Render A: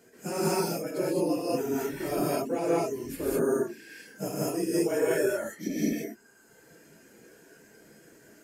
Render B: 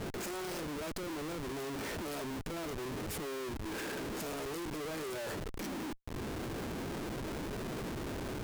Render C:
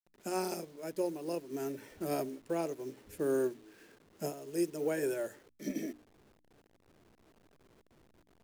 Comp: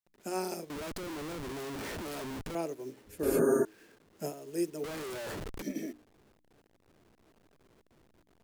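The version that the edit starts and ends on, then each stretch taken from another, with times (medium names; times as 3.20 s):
C
0.70–2.55 s: from B
3.23–3.65 s: from A
4.84–5.62 s: from B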